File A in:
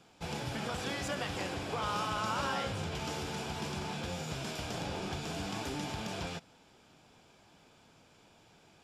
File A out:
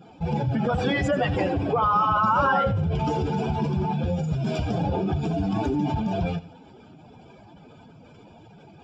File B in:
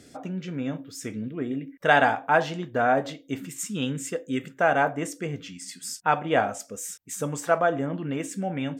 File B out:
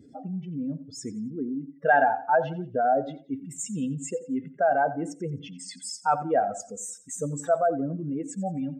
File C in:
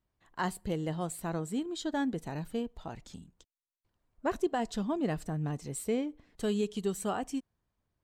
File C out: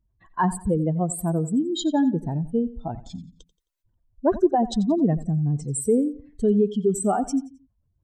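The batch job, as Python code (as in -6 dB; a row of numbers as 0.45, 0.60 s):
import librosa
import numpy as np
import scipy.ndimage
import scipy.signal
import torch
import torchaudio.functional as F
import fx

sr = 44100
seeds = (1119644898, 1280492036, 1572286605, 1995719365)

y = fx.spec_expand(x, sr, power=2.2)
y = fx.echo_feedback(y, sr, ms=88, feedback_pct=34, wet_db=-17)
y = librosa.util.normalize(y) * 10.0 ** (-9 / 20.0)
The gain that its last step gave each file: +13.5, -0.5, +11.5 dB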